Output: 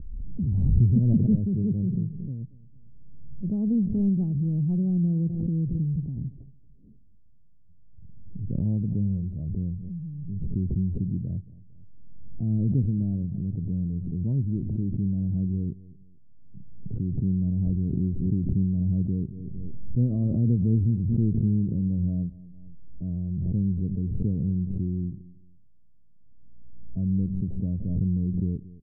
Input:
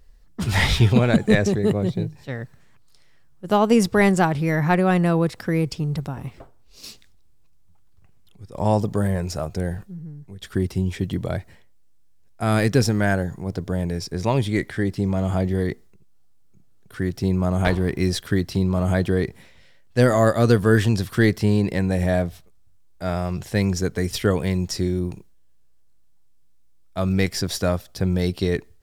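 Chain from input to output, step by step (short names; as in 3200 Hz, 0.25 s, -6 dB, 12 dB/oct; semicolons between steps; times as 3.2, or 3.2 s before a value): Wiener smoothing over 25 samples; in parallel at -2 dB: compressor, threshold -34 dBFS, peak gain reduction 21 dB; on the sum: bit-crush 11-bit; ladder low-pass 270 Hz, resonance 25%; on a send: feedback echo 0.227 s, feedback 28%, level -19.5 dB; on the sum: backwards sustainer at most 27 dB/s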